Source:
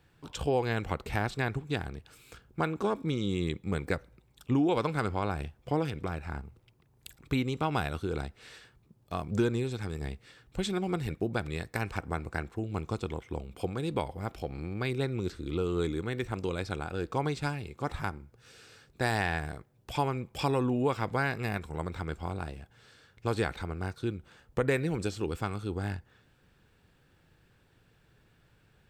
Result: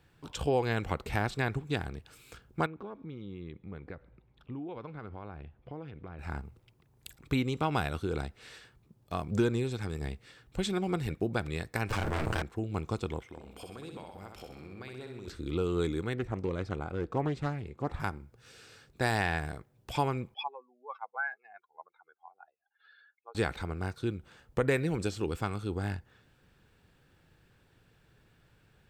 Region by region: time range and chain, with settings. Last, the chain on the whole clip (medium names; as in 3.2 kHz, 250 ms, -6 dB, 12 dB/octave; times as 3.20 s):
2.66–6.19 s: compression 2:1, threshold -48 dBFS + distance through air 340 m
11.89–12.42 s: comb filter that takes the minimum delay 9 ms + doubling 33 ms -7 dB + level flattener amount 100%
13.26–15.28 s: bass shelf 200 Hz -9 dB + compression 4:1, threshold -43 dBFS + flutter echo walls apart 10.9 m, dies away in 0.69 s
16.14–18.00 s: treble shelf 2.2 kHz -11.5 dB + loudspeaker Doppler distortion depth 0.25 ms
20.34–23.35 s: spectral contrast enhancement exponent 2.6 + elliptic band-pass 770–4100 Hz, stop band 70 dB
whole clip: none